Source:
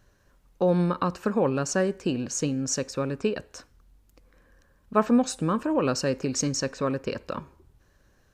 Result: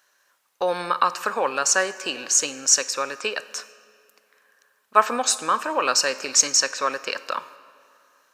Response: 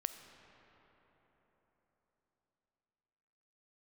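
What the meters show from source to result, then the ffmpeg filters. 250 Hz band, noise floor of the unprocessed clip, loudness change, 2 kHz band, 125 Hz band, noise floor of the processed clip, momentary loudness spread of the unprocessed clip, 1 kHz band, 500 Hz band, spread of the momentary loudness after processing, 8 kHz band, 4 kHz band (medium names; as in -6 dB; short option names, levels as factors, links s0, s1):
-12.0 dB, -63 dBFS, +5.0 dB, +11.0 dB, under -15 dB, -66 dBFS, 8 LU, +8.5 dB, -1.0 dB, 11 LU, +12.5 dB, +12.0 dB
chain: -filter_complex "[0:a]highpass=1000,agate=range=0.501:threshold=0.00141:ratio=16:detection=peak,asplit=2[s0][s1];[1:a]atrim=start_sample=2205,asetrate=83790,aresample=44100,highshelf=f=6600:g=8[s2];[s1][s2]afir=irnorm=-1:irlink=0,volume=1.19[s3];[s0][s3]amix=inputs=2:normalize=0,volume=2.37"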